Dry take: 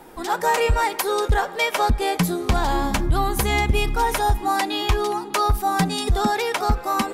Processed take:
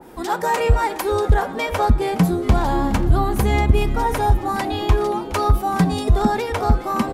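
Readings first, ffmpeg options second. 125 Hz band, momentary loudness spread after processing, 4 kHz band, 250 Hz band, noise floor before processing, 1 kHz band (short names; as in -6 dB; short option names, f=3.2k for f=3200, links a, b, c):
+5.5 dB, 4 LU, -5.0 dB, +4.5 dB, -35 dBFS, 0.0 dB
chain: -filter_complex "[0:a]highpass=40,lowshelf=f=380:g=6.5,bandreject=f=156.3:t=h:w=4,bandreject=f=312.6:t=h:w=4,bandreject=f=468.9:t=h:w=4,bandreject=f=625.2:t=h:w=4,bandreject=f=781.5:t=h:w=4,bandreject=f=937.8:t=h:w=4,bandreject=f=1.0941k:t=h:w=4,bandreject=f=1.2504k:t=h:w=4,bandreject=f=1.4067k:t=h:w=4,bandreject=f=1.563k:t=h:w=4,bandreject=f=1.7193k:t=h:w=4,bandreject=f=1.8756k:t=h:w=4,bandreject=f=2.0319k:t=h:w=4,bandreject=f=2.1882k:t=h:w=4,bandreject=f=2.3445k:t=h:w=4,bandreject=f=2.5008k:t=h:w=4,bandreject=f=2.6571k:t=h:w=4,bandreject=f=2.8134k:t=h:w=4,bandreject=f=2.9697k:t=h:w=4,bandreject=f=3.126k:t=h:w=4,bandreject=f=3.2823k:t=h:w=4,bandreject=f=3.4386k:t=h:w=4,bandreject=f=3.5949k:t=h:w=4,bandreject=f=3.7512k:t=h:w=4,bandreject=f=3.9075k:t=h:w=4,bandreject=f=4.0638k:t=h:w=4,bandreject=f=4.2201k:t=h:w=4,bandreject=f=4.3764k:t=h:w=4,bandreject=f=4.5327k:t=h:w=4,bandreject=f=4.689k:t=h:w=4,asplit=7[a][b][c][d][e][f][g];[b]adelay=417,afreqshift=-140,volume=-16dB[h];[c]adelay=834,afreqshift=-280,volume=-20.6dB[i];[d]adelay=1251,afreqshift=-420,volume=-25.2dB[j];[e]adelay=1668,afreqshift=-560,volume=-29.7dB[k];[f]adelay=2085,afreqshift=-700,volume=-34.3dB[l];[g]adelay=2502,afreqshift=-840,volume=-38.9dB[m];[a][h][i][j][k][l][m]amix=inputs=7:normalize=0,adynamicequalizer=threshold=0.0141:dfrequency=1900:dqfactor=0.7:tfrequency=1900:tqfactor=0.7:attack=5:release=100:ratio=0.375:range=3:mode=cutabove:tftype=highshelf"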